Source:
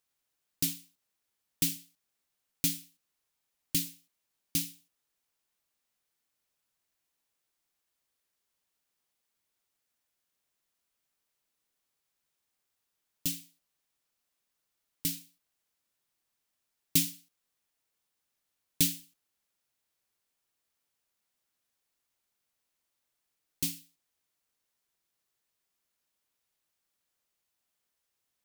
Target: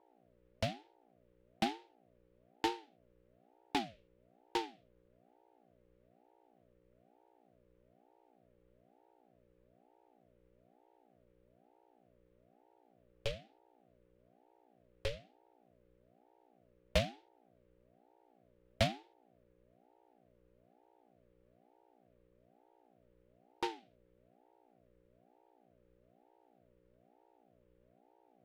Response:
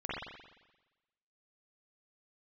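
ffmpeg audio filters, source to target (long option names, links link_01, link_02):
-filter_complex "[0:a]adynamicsmooth=sensitivity=4:basefreq=3600,aeval=exprs='val(0)+0.000708*(sin(2*PI*60*n/s)+sin(2*PI*2*60*n/s)/2+sin(2*PI*3*60*n/s)/3+sin(2*PI*4*60*n/s)/4+sin(2*PI*5*60*n/s)/5)':channel_layout=same,acrossover=split=190 3200:gain=0.141 1 0.0794[link_01][link_02][link_03];[link_01][link_02][link_03]amix=inputs=3:normalize=0,aeval=exprs='val(0)*sin(2*PI*440*n/s+440*0.45/1.1*sin(2*PI*1.1*n/s))':channel_layout=same,volume=8dB"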